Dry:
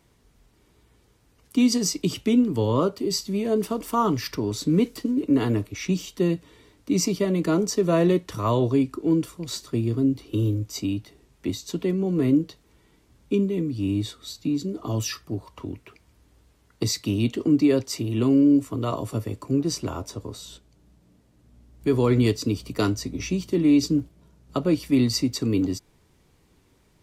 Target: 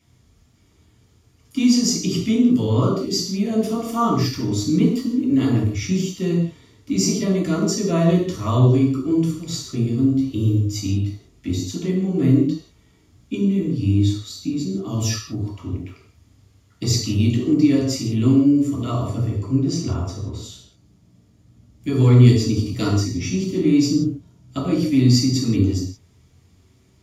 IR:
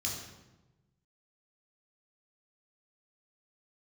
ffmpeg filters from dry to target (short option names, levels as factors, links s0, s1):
-filter_complex "[0:a]asettb=1/sr,asplit=3[s0][s1][s2];[s0]atrim=end=19.034[s3];[s1]atrim=start=19.03:end=20.43,asetpts=PTS-STARTPTS,afade=t=in:d=0.004:c=qsin,afade=t=out:st=1.396:d=0.004:c=qsin,highshelf=f=6300:g=-9.5[s4];[s2]atrim=start=20.426[s5];[s3][s4]acrossfade=d=0.004:c1=hsin:c2=qsin[s6];[s6][s5]acrossfade=d=0.004:c1=qsin:c2=hsin[s7];[1:a]atrim=start_sample=2205,afade=t=out:st=0.24:d=0.01,atrim=end_sample=11025[s8];[s7][s8]afir=irnorm=-1:irlink=0,volume=0.841"